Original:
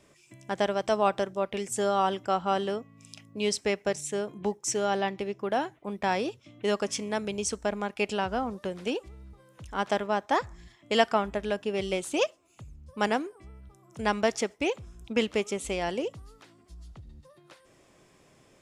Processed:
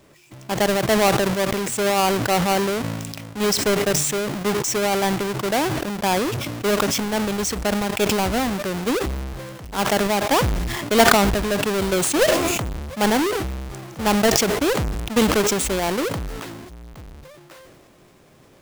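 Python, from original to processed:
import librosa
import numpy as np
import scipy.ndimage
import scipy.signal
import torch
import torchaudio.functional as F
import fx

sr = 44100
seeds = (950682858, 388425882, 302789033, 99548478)

y = fx.halfwave_hold(x, sr)
y = fx.sustainer(y, sr, db_per_s=27.0)
y = y * librosa.db_to_amplitude(2.5)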